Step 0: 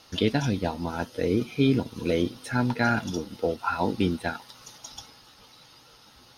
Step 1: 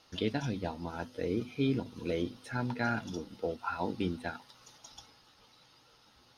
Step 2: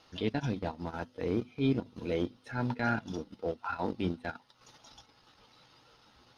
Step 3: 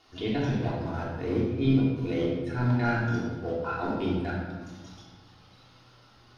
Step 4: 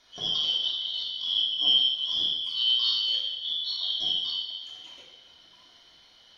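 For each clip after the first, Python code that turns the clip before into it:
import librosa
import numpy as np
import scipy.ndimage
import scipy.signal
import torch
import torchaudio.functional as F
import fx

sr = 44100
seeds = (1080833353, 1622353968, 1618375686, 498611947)

y1 = fx.high_shelf(x, sr, hz=8700.0, db=-8.5)
y1 = fx.hum_notches(y1, sr, base_hz=50, count=5)
y1 = y1 * librosa.db_to_amplitude(-8.0)
y2 = fx.high_shelf(y1, sr, hz=6400.0, db=-10.5)
y2 = fx.transient(y2, sr, attack_db=-7, sustain_db=-11)
y2 = y2 * librosa.db_to_amplitude(3.5)
y3 = fx.room_shoebox(y2, sr, seeds[0], volume_m3=1100.0, walls='mixed', distance_m=3.3)
y3 = y3 * librosa.db_to_amplitude(-2.5)
y4 = fx.band_shuffle(y3, sr, order='3412')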